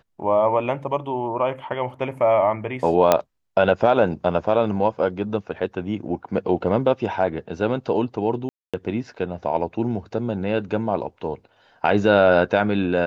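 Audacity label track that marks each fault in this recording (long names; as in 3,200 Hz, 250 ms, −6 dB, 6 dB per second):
3.120000	3.120000	click −2 dBFS
8.490000	8.740000	drop-out 246 ms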